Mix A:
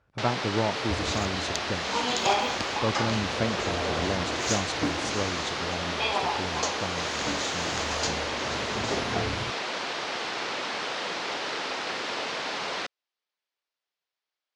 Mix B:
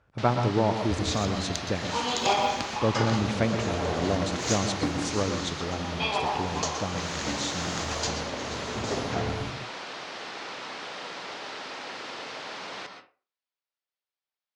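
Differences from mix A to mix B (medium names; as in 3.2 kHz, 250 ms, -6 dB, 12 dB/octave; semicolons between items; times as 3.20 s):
first sound -10.5 dB; second sound -3.5 dB; reverb: on, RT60 0.40 s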